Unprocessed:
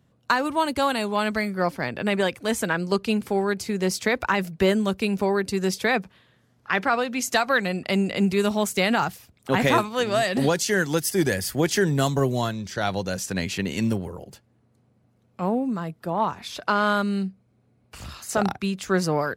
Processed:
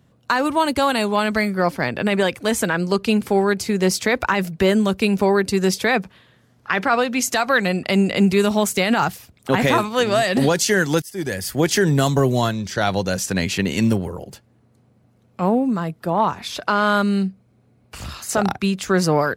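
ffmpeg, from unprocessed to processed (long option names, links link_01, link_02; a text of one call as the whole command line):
ffmpeg -i in.wav -filter_complex "[0:a]asplit=2[link_01][link_02];[link_01]atrim=end=11.02,asetpts=PTS-STARTPTS,afade=type=out:start_time=11.016:duration=0.004:curve=hsin:silence=0.0707946[link_03];[link_02]atrim=start=11.02,asetpts=PTS-STARTPTS,afade=type=in:duration=0.78:silence=0.0707946[link_04];[link_03][link_04]concat=n=2:v=0:a=1,alimiter=level_in=12dB:limit=-1dB:release=50:level=0:latency=1,volume=-6dB" out.wav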